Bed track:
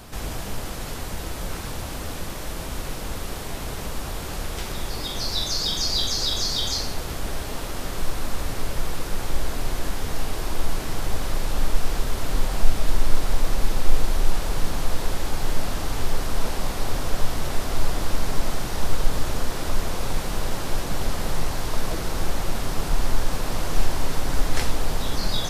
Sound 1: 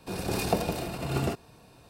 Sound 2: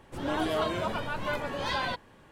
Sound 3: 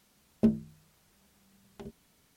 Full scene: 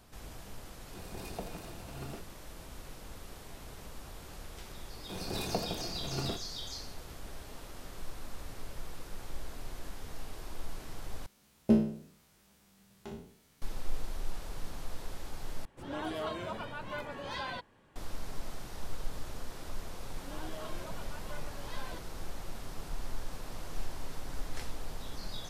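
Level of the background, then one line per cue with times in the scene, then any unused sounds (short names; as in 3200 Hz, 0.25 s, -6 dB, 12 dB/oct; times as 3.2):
bed track -16.5 dB
0.86 add 1 -15.5 dB
5.02 add 1 -8 dB
11.26 replace with 3 -1 dB + spectral trails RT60 0.58 s
15.65 replace with 2 -8 dB
20.03 add 2 -16 dB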